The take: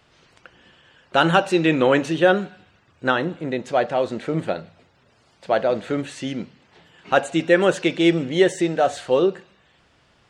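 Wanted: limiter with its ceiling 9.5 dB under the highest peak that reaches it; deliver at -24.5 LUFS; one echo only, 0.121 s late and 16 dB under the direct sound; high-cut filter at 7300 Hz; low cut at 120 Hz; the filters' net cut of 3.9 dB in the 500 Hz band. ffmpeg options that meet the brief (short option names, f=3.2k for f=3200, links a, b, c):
-af "highpass=120,lowpass=7.3k,equalizer=f=500:t=o:g=-5,alimiter=limit=-12.5dB:level=0:latency=1,aecho=1:1:121:0.158,volume=1.5dB"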